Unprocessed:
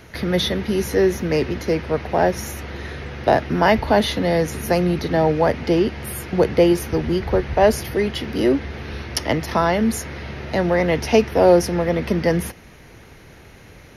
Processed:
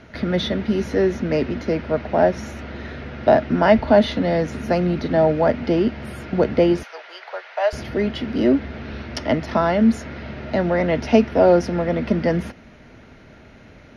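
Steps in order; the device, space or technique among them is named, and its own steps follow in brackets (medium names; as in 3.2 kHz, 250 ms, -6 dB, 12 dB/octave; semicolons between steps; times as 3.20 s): 6.83–7.73 s: Bessel high-pass 980 Hz, order 8; inside a cardboard box (low-pass 4.6 kHz 12 dB/octave; small resonant body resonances 240/620/1400 Hz, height 9 dB); trim -3 dB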